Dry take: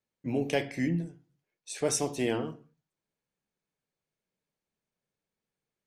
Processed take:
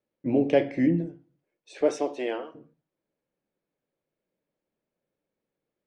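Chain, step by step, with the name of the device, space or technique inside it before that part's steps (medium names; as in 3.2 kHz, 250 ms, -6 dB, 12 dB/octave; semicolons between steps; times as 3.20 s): 1.81–2.54 s: high-pass 290 Hz -> 940 Hz 12 dB/octave; inside a cardboard box (low-pass 3.2 kHz 12 dB/octave; small resonant body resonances 320/530 Hz, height 10 dB, ringing for 20 ms)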